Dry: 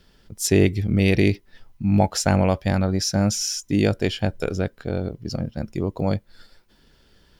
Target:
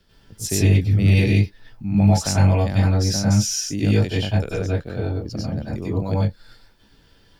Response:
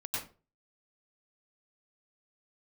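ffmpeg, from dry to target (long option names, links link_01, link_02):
-filter_complex "[0:a]acrossover=split=230|3000[link_01][link_02][link_03];[link_02]acompressor=threshold=-27dB:ratio=2[link_04];[link_01][link_04][link_03]amix=inputs=3:normalize=0[link_05];[1:a]atrim=start_sample=2205,atrim=end_sample=6174[link_06];[link_05][link_06]afir=irnorm=-1:irlink=0"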